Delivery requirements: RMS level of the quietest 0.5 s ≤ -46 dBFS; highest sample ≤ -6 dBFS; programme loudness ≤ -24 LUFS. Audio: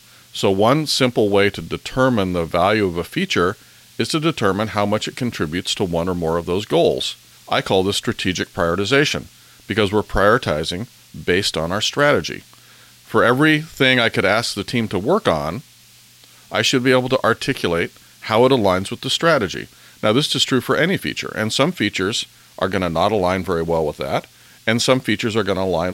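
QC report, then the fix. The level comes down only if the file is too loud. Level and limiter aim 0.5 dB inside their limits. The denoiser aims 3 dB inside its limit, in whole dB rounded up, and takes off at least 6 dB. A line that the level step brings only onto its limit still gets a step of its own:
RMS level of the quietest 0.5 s -48 dBFS: pass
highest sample -3.0 dBFS: fail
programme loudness -18.5 LUFS: fail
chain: trim -6 dB

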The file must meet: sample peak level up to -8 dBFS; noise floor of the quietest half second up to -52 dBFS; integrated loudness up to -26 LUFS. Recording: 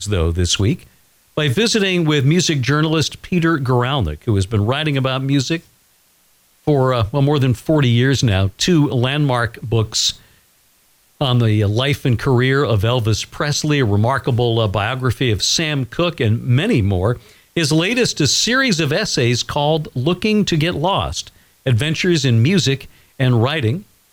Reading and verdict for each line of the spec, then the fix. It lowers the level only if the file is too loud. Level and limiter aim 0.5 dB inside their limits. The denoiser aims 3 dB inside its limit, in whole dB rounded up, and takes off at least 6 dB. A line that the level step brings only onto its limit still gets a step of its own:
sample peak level -6.0 dBFS: fail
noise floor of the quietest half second -56 dBFS: pass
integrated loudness -17.0 LUFS: fail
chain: trim -9.5 dB

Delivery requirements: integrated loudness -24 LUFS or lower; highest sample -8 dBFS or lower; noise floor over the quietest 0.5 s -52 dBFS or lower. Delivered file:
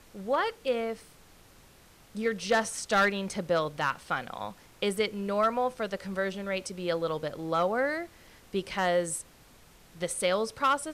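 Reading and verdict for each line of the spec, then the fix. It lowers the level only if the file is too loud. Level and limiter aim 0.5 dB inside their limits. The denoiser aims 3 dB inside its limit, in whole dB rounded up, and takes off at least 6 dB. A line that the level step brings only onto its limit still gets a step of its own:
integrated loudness -30.0 LUFS: pass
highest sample -17.0 dBFS: pass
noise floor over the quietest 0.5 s -57 dBFS: pass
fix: none needed

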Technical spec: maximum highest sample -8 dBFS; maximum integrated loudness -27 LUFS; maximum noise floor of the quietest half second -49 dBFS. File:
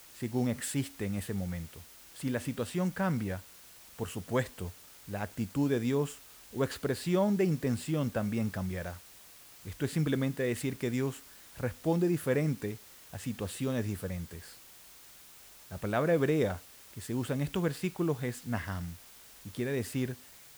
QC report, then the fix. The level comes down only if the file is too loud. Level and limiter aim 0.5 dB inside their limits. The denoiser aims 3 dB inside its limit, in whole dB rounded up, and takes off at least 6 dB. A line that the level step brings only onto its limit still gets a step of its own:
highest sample -15.5 dBFS: pass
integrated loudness -33.0 LUFS: pass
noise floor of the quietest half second -54 dBFS: pass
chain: none needed

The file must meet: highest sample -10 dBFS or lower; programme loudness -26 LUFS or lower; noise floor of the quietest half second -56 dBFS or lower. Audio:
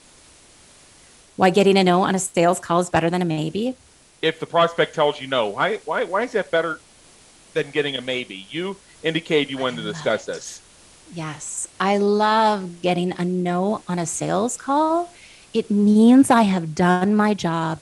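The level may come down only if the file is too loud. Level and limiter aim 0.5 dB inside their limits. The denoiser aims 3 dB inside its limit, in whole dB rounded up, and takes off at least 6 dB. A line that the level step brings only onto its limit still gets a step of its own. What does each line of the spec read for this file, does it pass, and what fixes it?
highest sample -2.5 dBFS: fail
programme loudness -20.5 LUFS: fail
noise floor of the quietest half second -51 dBFS: fail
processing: trim -6 dB; peak limiter -10.5 dBFS

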